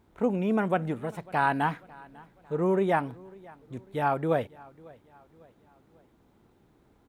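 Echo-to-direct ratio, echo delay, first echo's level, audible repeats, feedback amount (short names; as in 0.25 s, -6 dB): -22.5 dB, 0.548 s, -23.5 dB, 2, 46%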